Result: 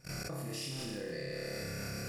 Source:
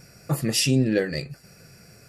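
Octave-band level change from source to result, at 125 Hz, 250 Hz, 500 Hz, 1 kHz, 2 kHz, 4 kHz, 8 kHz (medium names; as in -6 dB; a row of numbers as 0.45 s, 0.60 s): -14.5 dB, -17.5 dB, -12.5 dB, -7.5 dB, -10.0 dB, -13.0 dB, -14.5 dB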